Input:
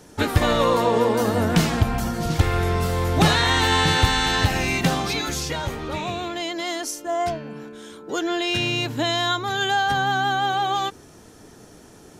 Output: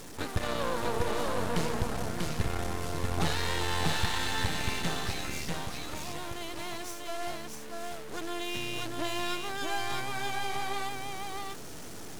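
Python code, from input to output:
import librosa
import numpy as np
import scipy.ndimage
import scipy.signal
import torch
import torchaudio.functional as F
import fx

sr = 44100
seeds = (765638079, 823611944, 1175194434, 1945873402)

y = fx.delta_mod(x, sr, bps=64000, step_db=-26.0)
y = np.maximum(y, 0.0)
y = y + 10.0 ** (-3.0 / 20.0) * np.pad(y, (int(641 * sr / 1000.0), 0))[:len(y)]
y = y * librosa.db_to_amplitude(-9.0)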